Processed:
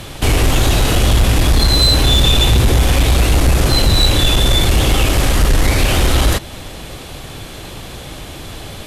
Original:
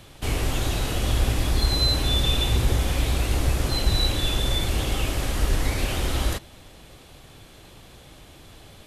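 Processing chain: in parallel at -0.5 dB: compressor, threshold -30 dBFS, peak gain reduction 14.5 dB; on the sum: sine folder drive 7 dB, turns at -6 dBFS

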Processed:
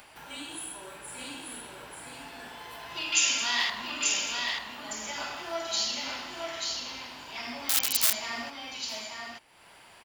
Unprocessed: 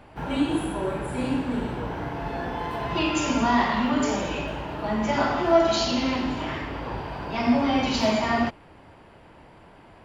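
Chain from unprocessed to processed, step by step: 3.12–3.7 weighting filter D; echo 0.886 s -4 dB; 7.69–8.13 wrapped overs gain 16.5 dB; pre-emphasis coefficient 0.97; upward compressor, threshold -47 dBFS; gain +3.5 dB

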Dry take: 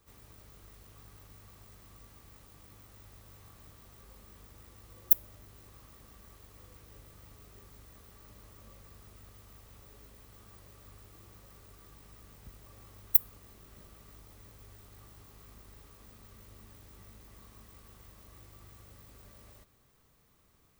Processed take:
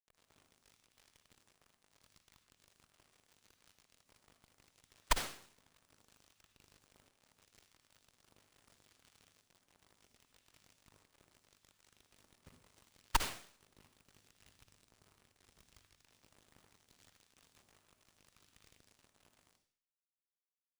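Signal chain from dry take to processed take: low shelf 72 Hz -10 dB; bit-crush 8-bit; on a send at -3 dB: reverb RT60 0.60 s, pre-delay 48 ms; on the sum: phaser stages 2, 0.74 Hz, lowest notch 530–4400 Hz; 14.37–16.03 low shelf 220 Hz +8 dB; running maximum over 3 samples; gain -7.5 dB

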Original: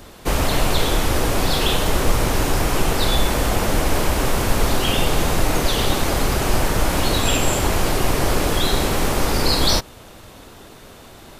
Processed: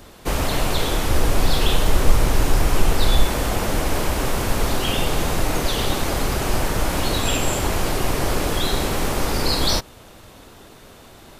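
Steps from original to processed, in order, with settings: 1.09–3.25 low shelf 66 Hz +8.5 dB; gain -2.5 dB

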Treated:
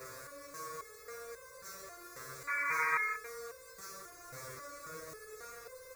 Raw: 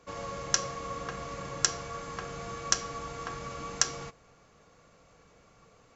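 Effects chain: infinite clipping; HPF 63 Hz 6 dB/oct; limiter -37.5 dBFS, peak gain reduction 5.5 dB; fixed phaser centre 820 Hz, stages 6; echo 0.565 s -7.5 dB; painted sound noise, 2.47–3.17, 920–2500 Hz -27 dBFS; stepped resonator 3.7 Hz 130–520 Hz; gain +7 dB

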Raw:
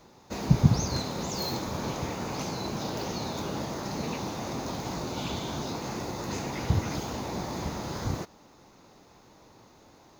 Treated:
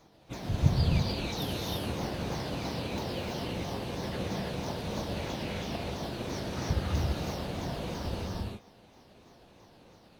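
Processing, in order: repeated pitch sweeps -10.5 st, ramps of 0.331 s; non-linear reverb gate 0.36 s rising, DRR -2.5 dB; gain -4.5 dB

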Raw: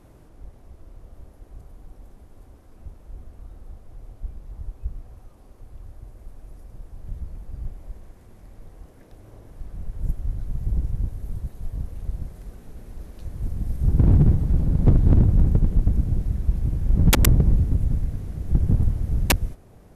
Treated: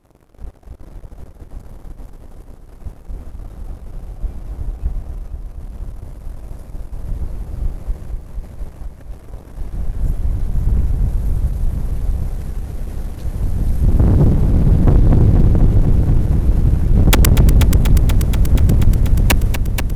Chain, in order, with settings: sample leveller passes 3; multi-head echo 0.241 s, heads first and second, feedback 75%, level -11 dB; gain -1 dB

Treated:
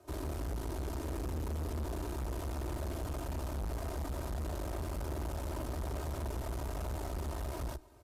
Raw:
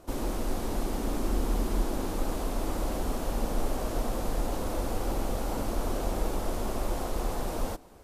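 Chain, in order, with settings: comb 3.3 ms, depth 79%; frequency shift +37 Hz; tube stage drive 29 dB, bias 0.75; gain -5 dB

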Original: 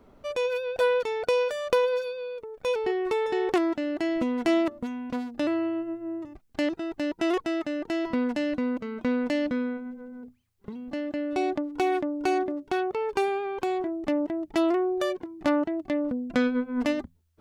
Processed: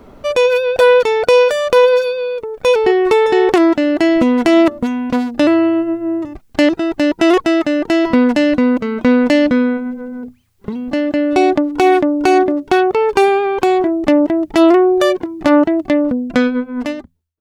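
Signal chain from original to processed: ending faded out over 1.70 s; maximiser +16 dB; gain -1 dB

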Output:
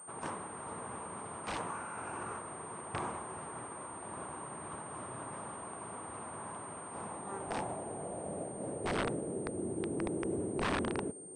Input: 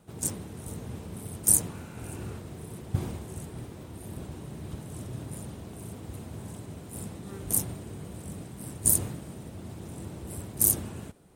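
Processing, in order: band-pass sweep 1100 Hz -> 380 Hz, 6.83–9.67; wrapped overs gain 39 dB; pulse-width modulation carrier 8700 Hz; gain +12.5 dB

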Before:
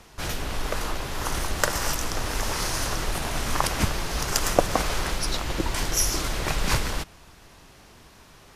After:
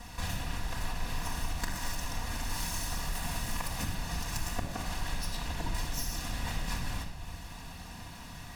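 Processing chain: minimum comb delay 1.1 ms; 2.49–3.95 high shelf 6400 Hz +6 dB; compressor 6:1, threshold -39 dBFS, peak gain reduction 24.5 dB; reverb RT60 0.95 s, pre-delay 4 ms, DRR -4 dB

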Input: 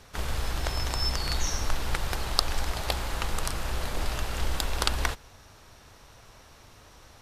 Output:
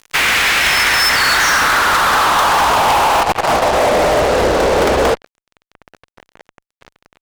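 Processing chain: 3.15–3.73 negative-ratio compressor -31 dBFS, ratio -0.5; band-pass sweep 2200 Hz -> 490 Hz, 0.6–4.51; fuzz box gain 50 dB, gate -55 dBFS; gain +3 dB

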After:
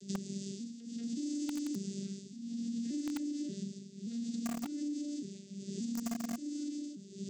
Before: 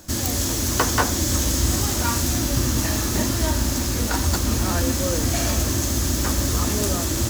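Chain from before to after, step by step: arpeggiated vocoder minor triad, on G3, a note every 0.579 s; limiter -20 dBFS, peak gain reduction 8.5 dB; tremolo 0.64 Hz, depth 93%; Chebyshev band-stop 270–3700 Hz, order 2; in parallel at -3 dB: bit-crush 4-bit; on the sum: dynamic EQ 3600 Hz, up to -4 dB, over -49 dBFS, Q 1.7; compressor 5:1, threshold -39 dBFS, peak gain reduction 18.5 dB; gain +3 dB

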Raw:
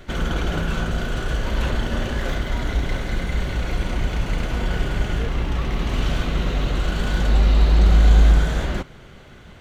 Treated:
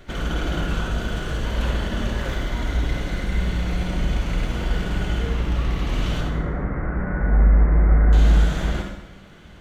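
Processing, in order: 6.21–8.13 steep low-pass 2100 Hz 72 dB/oct; on a send: reverb RT60 0.85 s, pre-delay 48 ms, DRR 2.5 dB; on the sum: gain -3.5 dB

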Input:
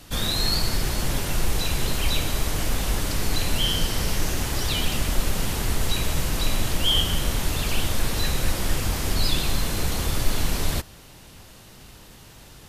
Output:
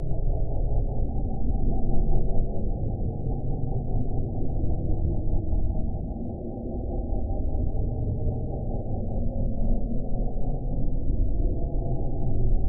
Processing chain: Chebyshev low-pass 800 Hz, order 8; buzz 120 Hz, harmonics 5, -34 dBFS -9 dB/oct; Paulstretch 45×, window 0.05 s, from 7.74; rotary speaker horn 5 Hz, later 0.7 Hz, at 9.13

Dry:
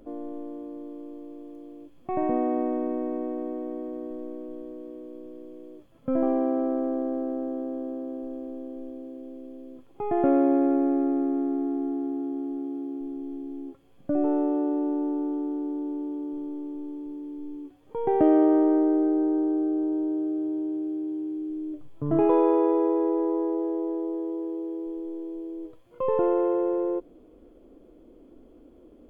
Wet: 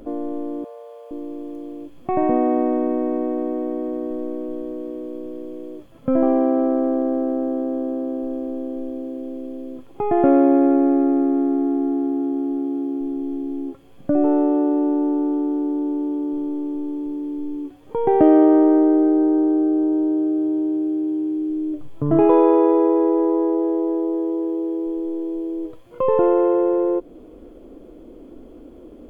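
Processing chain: in parallel at -2.5 dB: compressor, threshold -35 dBFS, peak gain reduction 18 dB; 0.64–1.11 on the sum: steep high-pass 470 Hz 72 dB/oct; gain +5.5 dB

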